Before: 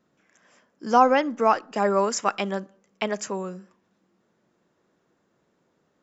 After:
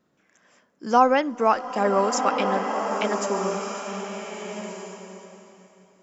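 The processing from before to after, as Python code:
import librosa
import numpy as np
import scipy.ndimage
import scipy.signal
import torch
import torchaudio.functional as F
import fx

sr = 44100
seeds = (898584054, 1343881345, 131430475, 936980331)

y = fx.rev_bloom(x, sr, seeds[0], attack_ms=1520, drr_db=4.0)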